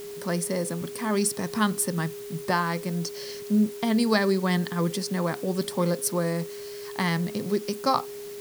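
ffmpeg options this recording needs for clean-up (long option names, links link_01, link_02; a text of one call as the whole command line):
ffmpeg -i in.wav -af "bandreject=frequency=410:width=30,afwtdn=0.0045" out.wav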